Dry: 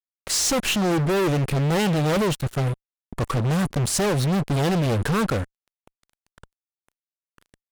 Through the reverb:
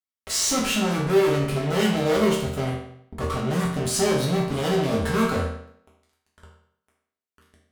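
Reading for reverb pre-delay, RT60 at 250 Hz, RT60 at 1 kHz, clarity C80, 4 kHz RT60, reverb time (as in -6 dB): 5 ms, 0.65 s, 0.65 s, 7.0 dB, 0.60 s, 0.65 s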